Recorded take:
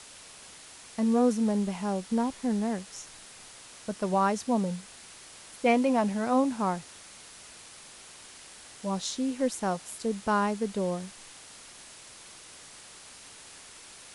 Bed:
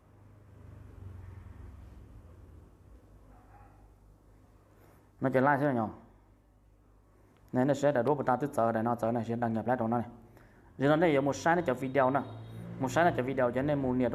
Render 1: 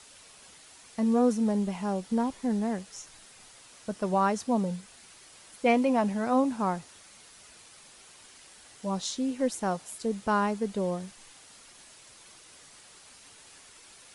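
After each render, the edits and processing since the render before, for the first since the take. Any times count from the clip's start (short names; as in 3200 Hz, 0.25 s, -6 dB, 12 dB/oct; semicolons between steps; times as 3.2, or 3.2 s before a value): denoiser 6 dB, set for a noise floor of -50 dBFS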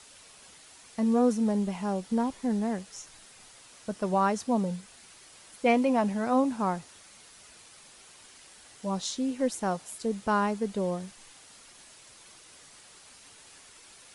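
nothing audible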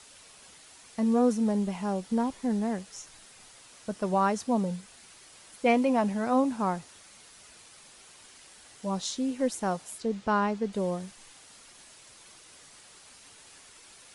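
10–10.73 LPF 5600 Hz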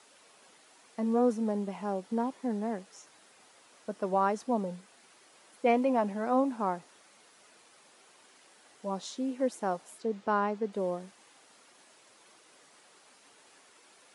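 HPF 270 Hz 12 dB/oct; high shelf 2100 Hz -10 dB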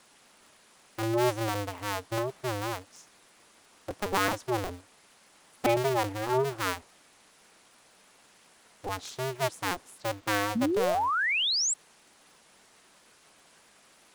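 cycle switcher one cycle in 2, inverted; 10.55–11.74 painted sound rise 210–8100 Hz -27 dBFS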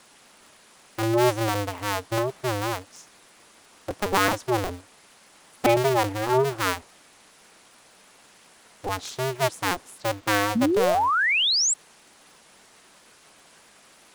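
gain +5.5 dB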